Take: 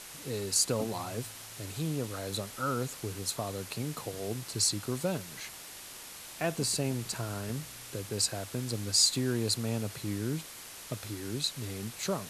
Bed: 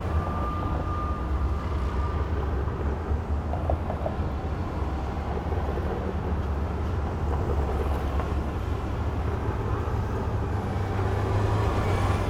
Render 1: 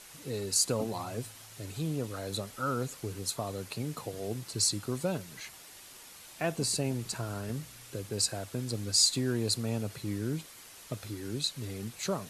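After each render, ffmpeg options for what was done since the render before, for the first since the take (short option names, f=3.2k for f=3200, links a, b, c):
-af "afftdn=nr=6:nf=-47"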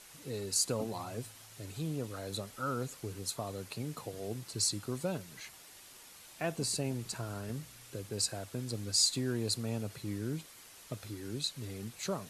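-af "volume=-3.5dB"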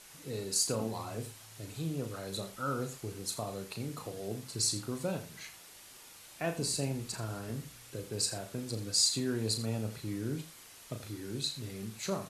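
-filter_complex "[0:a]asplit=2[a][b];[b]adelay=36,volume=-7.5dB[c];[a][c]amix=inputs=2:normalize=0,aecho=1:1:82:0.224"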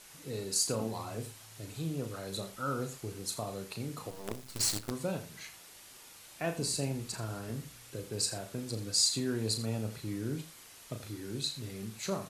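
-filter_complex "[0:a]asettb=1/sr,asplit=3[a][b][c];[a]atrim=end=4.104[d];[b]atrim=start=4.1:end=4.91,asetpts=PTS-STARTPTS,afade=t=in:d=0.004:c=qsin,afade=t=out:st=0.806:d=0.004:c=qsin,acrusher=bits=6:dc=4:mix=0:aa=0.000001[e];[c]atrim=start=4.906[f];[d][e]acrossfade=d=0.004:c1=hsin:c2=qsin[g];[g][f]acrossfade=d=0.004:c1=qsin:c2=hsin"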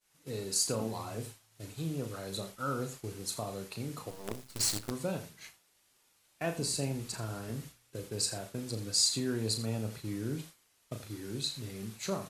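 -af "agate=range=-33dB:threshold=-42dB:ratio=3:detection=peak"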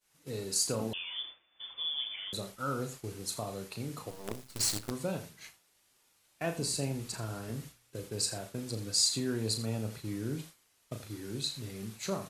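-filter_complex "[0:a]asettb=1/sr,asplit=3[a][b][c];[a]atrim=end=0.934[d];[b]atrim=start=0.93:end=2.33,asetpts=PTS-STARTPTS,afade=t=in:d=0.004:c=qsin,afade=t=out:st=1.396:d=0.004:c=qsin,lowpass=f=3.1k:t=q:w=0.5098,lowpass=f=3.1k:t=q:w=0.6013,lowpass=f=3.1k:t=q:w=0.9,lowpass=f=3.1k:t=q:w=2.563,afreqshift=-3600[e];[c]atrim=start=2.326[f];[d][e]acrossfade=d=0.004:c1=hsin:c2=qsin[g];[g][f]acrossfade=d=0.004:c1=qsin:c2=hsin"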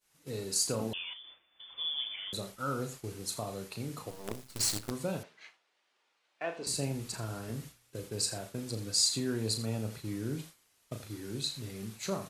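-filter_complex "[0:a]asettb=1/sr,asplit=3[a][b][c];[a]atrim=end=1.134[d];[b]atrim=start=1.13:end=1.73,asetpts=PTS-STARTPTS,afade=t=in:d=0.004:c=qsin,afade=t=out:st=0.596:d=0.004:c=qsin,acompressor=threshold=-47dB:ratio=5:attack=3.2:release=140:knee=1:detection=peak[e];[c]atrim=start=1.726[f];[d][e]acrossfade=d=0.004:c1=hsin:c2=qsin[g];[g][f]acrossfade=d=0.004:c1=qsin:c2=hsin,asettb=1/sr,asplit=3[h][i][j];[h]atrim=end=5.234[k];[i]atrim=start=5.23:end=6.67,asetpts=PTS-STARTPTS,afade=t=in:d=0.004:c=qsin,afade=t=out:st=1.436:d=0.004:c=qsin,highpass=430,lowpass=3.3k[l];[j]atrim=start=6.666[m];[k][l]acrossfade=d=0.004:c1=hsin:c2=qsin[n];[n][m]acrossfade=d=0.004:c1=qsin:c2=hsin"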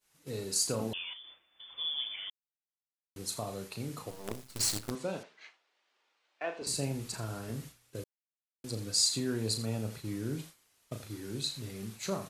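-filter_complex "[0:a]asettb=1/sr,asplit=3[a][b][c];[a]atrim=end=4.954[d];[b]atrim=start=4.95:end=6.62,asetpts=PTS-STARTPTS,afade=t=in:d=0.004:c=qsin,afade=t=out:st=1.666:d=0.004:c=qsin,highpass=220,lowpass=7.4k[e];[c]atrim=start=6.616[f];[d][e]acrossfade=d=0.004:c1=hsin:c2=qsin[g];[g][f]acrossfade=d=0.004:c1=qsin:c2=hsin,asplit=5[h][i][j][k][l];[h]atrim=end=2.3,asetpts=PTS-STARTPTS,afade=t=out:st=2.296:d=0.004:c=hsin[m];[i]atrim=start=2.3:end=3.16,asetpts=PTS-STARTPTS,volume=0[n];[j]atrim=start=3.16:end=8.04,asetpts=PTS-STARTPTS,afade=t=in:d=0.004:c=hsin,afade=t=out:st=4.876:d=0.004:c=hsin[o];[k]atrim=start=8.04:end=8.64,asetpts=PTS-STARTPTS,volume=0[p];[l]atrim=start=8.64,asetpts=PTS-STARTPTS,afade=t=in:d=0.004:c=hsin[q];[m][n][o][p][q]concat=n=5:v=0:a=1"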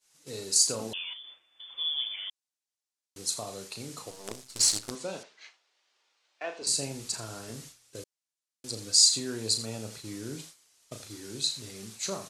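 -af "lowpass=7.5k,bass=f=250:g=-6,treble=f=4k:g=12"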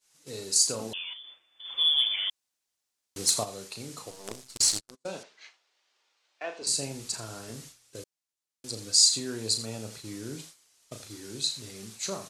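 -filter_complex "[0:a]asplit=3[a][b][c];[a]afade=t=out:st=1.64:d=0.02[d];[b]aeval=exprs='0.237*sin(PI/2*1.58*val(0)/0.237)':c=same,afade=t=in:st=1.64:d=0.02,afade=t=out:st=3.43:d=0.02[e];[c]afade=t=in:st=3.43:d=0.02[f];[d][e][f]amix=inputs=3:normalize=0,asettb=1/sr,asplit=3[g][h][i];[g]atrim=end=4.574[j];[h]atrim=start=4.57:end=5.07,asetpts=PTS-STARTPTS,afade=t=in:d=0.004:c=qsin,afade=t=out:st=0.496:d=0.004:c=qsin,agate=range=-41dB:threshold=-36dB:ratio=16:release=100:detection=peak[k];[i]atrim=start=5.066[l];[j][k]acrossfade=d=0.004:c1=hsin:c2=qsin[m];[m][l]acrossfade=d=0.004:c1=qsin:c2=hsin"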